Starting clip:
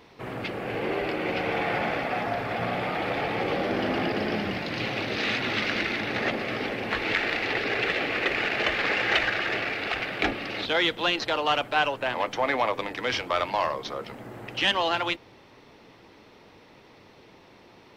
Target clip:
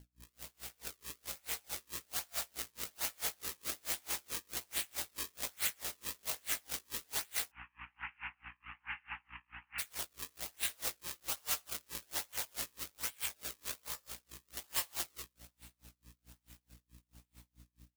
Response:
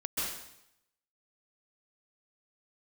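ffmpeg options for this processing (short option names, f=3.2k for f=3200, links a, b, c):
-filter_complex "[0:a]dynaudnorm=f=920:g=5:m=8dB,aecho=1:1:124|248|372|496|620:0.168|0.089|0.0472|0.025|0.0132,acrusher=samples=35:mix=1:aa=0.000001:lfo=1:lforange=56:lforate=1.2,aeval=exprs='max(val(0),0)':c=same,alimiter=limit=-14dB:level=0:latency=1:release=49,aderivative,aecho=1:1:85:0.631,aeval=exprs='0.15*(abs(mod(val(0)/0.15+3,4)-2)-1)':c=same,flanger=delay=17:depth=3.7:speed=2.6,asplit=3[a][b][c];[a]afade=t=out:st=7.5:d=0.02[d];[b]asuperpass=centerf=1500:order=20:qfactor=0.73,afade=t=in:st=7.5:d=0.02,afade=t=out:st=9.78:d=0.02[e];[c]afade=t=in:st=9.78:d=0.02[f];[d][e][f]amix=inputs=3:normalize=0,aeval=exprs='val(0)+0.001*(sin(2*PI*60*n/s)+sin(2*PI*2*60*n/s)/2+sin(2*PI*3*60*n/s)/3+sin(2*PI*4*60*n/s)/4+sin(2*PI*5*60*n/s)/5)':c=same,aeval=exprs='val(0)*pow(10,-35*(0.5-0.5*cos(2*PI*4.6*n/s))/20)':c=same,volume=5.5dB"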